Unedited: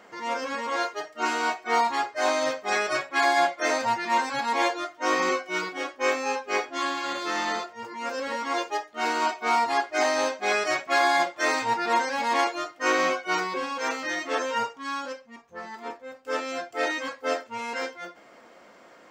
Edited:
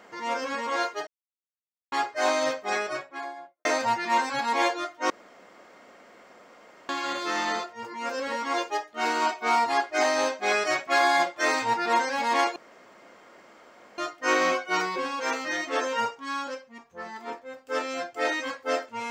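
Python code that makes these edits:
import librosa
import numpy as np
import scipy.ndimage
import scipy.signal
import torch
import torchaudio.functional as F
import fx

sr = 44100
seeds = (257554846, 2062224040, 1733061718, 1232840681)

y = fx.studio_fade_out(x, sr, start_s=2.44, length_s=1.21)
y = fx.edit(y, sr, fx.silence(start_s=1.07, length_s=0.85),
    fx.room_tone_fill(start_s=5.1, length_s=1.79),
    fx.insert_room_tone(at_s=12.56, length_s=1.42), tone=tone)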